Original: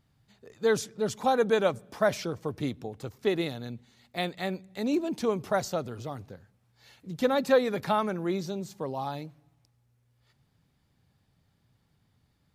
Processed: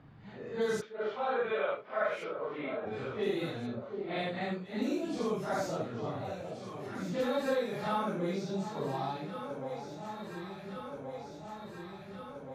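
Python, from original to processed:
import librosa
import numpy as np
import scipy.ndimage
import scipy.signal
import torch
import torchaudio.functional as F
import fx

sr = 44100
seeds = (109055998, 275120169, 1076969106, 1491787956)

y = fx.phase_scramble(x, sr, seeds[0], window_ms=200)
y = fx.cabinet(y, sr, low_hz=480.0, low_slope=12, high_hz=3100.0, hz=(550.0, 820.0, 1300.0, 2200.0), db=(4, -4, 6, 5), at=(0.8, 2.85), fade=0.02)
y = fx.env_lowpass(y, sr, base_hz=1700.0, full_db=-24.5)
y = fx.echo_alternate(y, sr, ms=713, hz=1000.0, feedback_pct=68, wet_db=-13.5)
y = fx.band_squash(y, sr, depth_pct=70)
y = y * 10.0 ** (-4.5 / 20.0)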